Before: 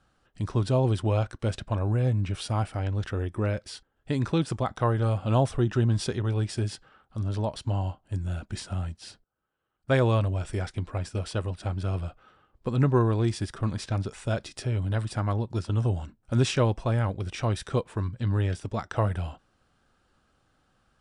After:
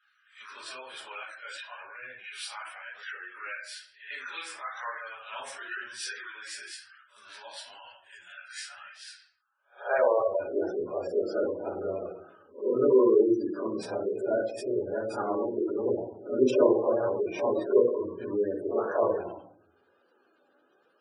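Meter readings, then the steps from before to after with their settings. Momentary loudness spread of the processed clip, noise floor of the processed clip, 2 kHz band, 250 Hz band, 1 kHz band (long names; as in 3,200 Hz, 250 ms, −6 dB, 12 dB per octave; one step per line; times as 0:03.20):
20 LU, −68 dBFS, +1.5 dB, −2.0 dB, −2.5 dB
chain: peak hold with a rise ahead of every peak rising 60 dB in 0.32 s
high-pass filter sweep 1,800 Hz → 380 Hz, 0:09.02–0:10.58
rectangular room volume 74 cubic metres, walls mixed, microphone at 1.3 metres
dynamic equaliser 3,200 Hz, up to −5 dB, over −42 dBFS, Q 0.73
gate on every frequency bin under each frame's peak −20 dB strong
flanger 1 Hz, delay 1.5 ms, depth 2.3 ms, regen +60%
parametric band 82 Hz −3.5 dB 2.8 octaves
level −1.5 dB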